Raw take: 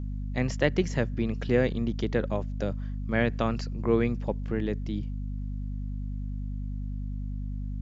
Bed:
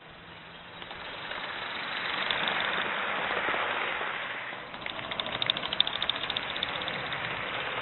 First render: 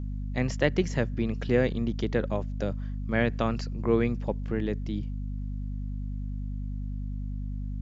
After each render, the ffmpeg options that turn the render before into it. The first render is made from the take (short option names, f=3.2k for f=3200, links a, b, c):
-af anull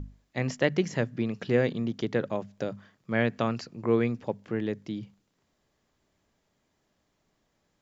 -af "bandreject=f=50:t=h:w=6,bandreject=f=100:t=h:w=6,bandreject=f=150:t=h:w=6,bandreject=f=200:t=h:w=6,bandreject=f=250:t=h:w=6"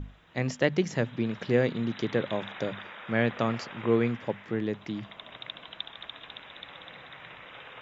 -filter_complex "[1:a]volume=-13dB[a];[0:a][a]amix=inputs=2:normalize=0"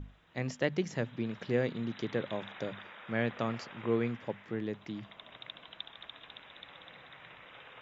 -af "volume=-6dB"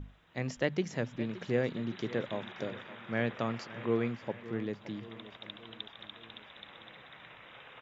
-af "aecho=1:1:570|1140|1710|2280|2850:0.158|0.0872|0.0479|0.0264|0.0145"